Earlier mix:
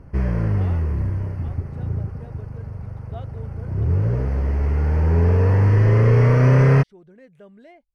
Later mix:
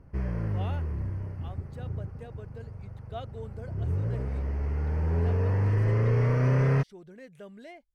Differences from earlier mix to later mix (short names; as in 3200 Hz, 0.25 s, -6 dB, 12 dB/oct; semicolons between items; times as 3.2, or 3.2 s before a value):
speech: add high shelf 3300 Hz +11 dB; background -9.5 dB